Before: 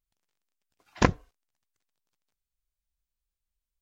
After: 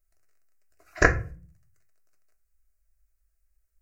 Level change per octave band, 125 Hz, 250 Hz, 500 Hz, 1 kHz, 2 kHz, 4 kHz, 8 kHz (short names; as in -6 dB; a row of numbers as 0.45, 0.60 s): +0.5 dB, -3.5 dB, +3.5 dB, +0.5 dB, +10.5 dB, -3.5 dB, n/a